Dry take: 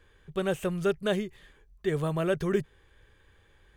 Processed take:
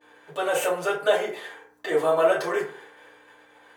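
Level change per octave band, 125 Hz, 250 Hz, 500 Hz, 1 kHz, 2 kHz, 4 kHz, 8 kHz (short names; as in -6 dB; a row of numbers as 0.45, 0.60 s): -13.5, -4.5, +6.5, +11.0, +8.5, +6.0, +10.5 dB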